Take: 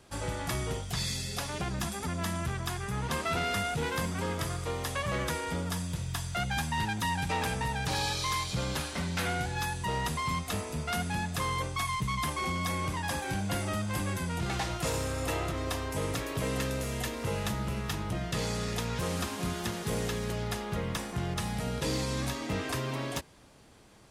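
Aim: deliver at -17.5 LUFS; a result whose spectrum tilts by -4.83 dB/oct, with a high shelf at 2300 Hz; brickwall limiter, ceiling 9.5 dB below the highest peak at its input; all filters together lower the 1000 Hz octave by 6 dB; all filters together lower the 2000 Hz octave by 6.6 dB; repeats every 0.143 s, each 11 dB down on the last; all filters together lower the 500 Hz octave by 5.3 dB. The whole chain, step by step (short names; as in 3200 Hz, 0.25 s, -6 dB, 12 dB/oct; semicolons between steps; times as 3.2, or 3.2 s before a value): bell 500 Hz -5 dB; bell 1000 Hz -4 dB; bell 2000 Hz -5 dB; high shelf 2300 Hz -3.5 dB; limiter -32.5 dBFS; feedback echo 0.143 s, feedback 28%, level -11 dB; gain +23 dB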